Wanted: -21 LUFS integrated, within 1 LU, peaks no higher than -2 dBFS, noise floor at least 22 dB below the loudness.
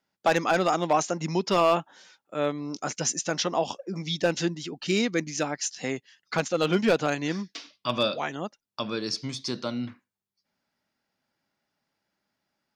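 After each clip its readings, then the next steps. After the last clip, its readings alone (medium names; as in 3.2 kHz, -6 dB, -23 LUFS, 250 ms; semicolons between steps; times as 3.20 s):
clipped samples 0.3%; clipping level -14.0 dBFS; loudness -27.5 LUFS; peak level -14.0 dBFS; loudness target -21.0 LUFS
-> clip repair -14 dBFS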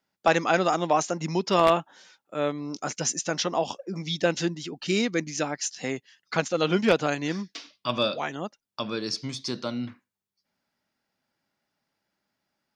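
clipped samples 0.0%; loudness -27.0 LUFS; peak level -5.0 dBFS; loudness target -21.0 LUFS
-> trim +6 dB; peak limiter -2 dBFS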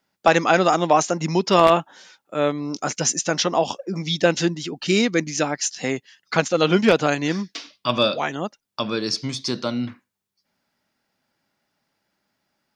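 loudness -21.5 LUFS; peak level -2.0 dBFS; noise floor -78 dBFS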